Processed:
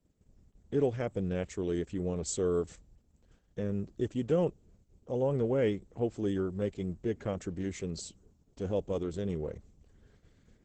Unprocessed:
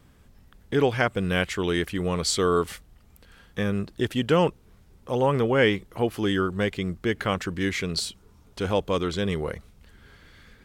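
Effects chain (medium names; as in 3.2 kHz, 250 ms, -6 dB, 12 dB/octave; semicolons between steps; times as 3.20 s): high-order bell 2.1 kHz -12.5 dB 2.9 oct; gate -53 dBFS, range -12 dB; 1.66–3.81 s: dynamic bell 4.6 kHz, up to -4 dB, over -51 dBFS, Q 3.4; trim -6 dB; Opus 10 kbps 48 kHz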